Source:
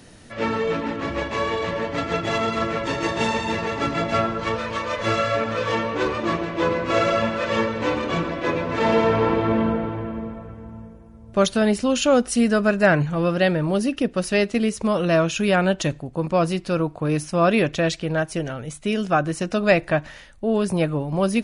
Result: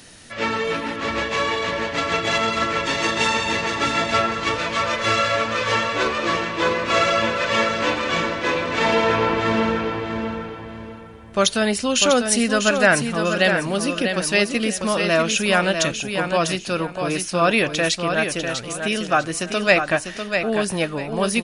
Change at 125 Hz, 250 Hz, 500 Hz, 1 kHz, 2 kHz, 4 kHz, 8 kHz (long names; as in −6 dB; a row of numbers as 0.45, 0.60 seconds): −4.0, −2.0, 0.0, +2.5, +5.5, +7.5, +8.5 decibels